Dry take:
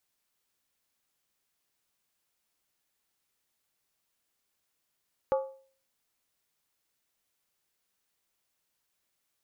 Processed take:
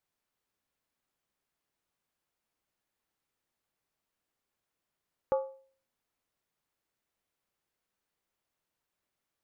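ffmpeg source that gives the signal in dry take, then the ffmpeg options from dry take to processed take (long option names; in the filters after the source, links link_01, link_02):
-f lavfi -i "aevalsrc='0.0891*pow(10,-3*t/0.46)*sin(2*PI*535*t)+0.0398*pow(10,-3*t/0.364)*sin(2*PI*852.8*t)+0.0178*pow(10,-3*t/0.315)*sin(2*PI*1142.8*t)+0.00794*pow(10,-3*t/0.304)*sin(2*PI*1228.4*t)+0.00355*pow(10,-3*t/0.282)*sin(2*PI*1419.4*t)':duration=0.63:sample_rate=44100"
-af "highshelf=frequency=2500:gain=-10.5"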